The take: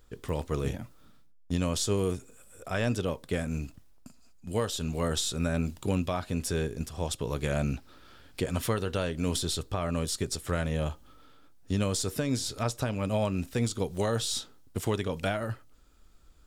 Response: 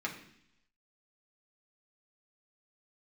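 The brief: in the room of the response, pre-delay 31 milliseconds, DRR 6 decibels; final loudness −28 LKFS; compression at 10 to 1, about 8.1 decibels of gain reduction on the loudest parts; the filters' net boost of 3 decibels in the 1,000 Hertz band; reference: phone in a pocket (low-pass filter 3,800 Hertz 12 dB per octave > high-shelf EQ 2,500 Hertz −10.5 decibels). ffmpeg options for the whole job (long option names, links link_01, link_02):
-filter_complex "[0:a]equalizer=frequency=1000:width_type=o:gain=6,acompressor=threshold=-31dB:ratio=10,asplit=2[link_01][link_02];[1:a]atrim=start_sample=2205,adelay=31[link_03];[link_02][link_03]afir=irnorm=-1:irlink=0,volume=-10dB[link_04];[link_01][link_04]amix=inputs=2:normalize=0,lowpass=3800,highshelf=frequency=2500:gain=-10.5,volume=9.5dB"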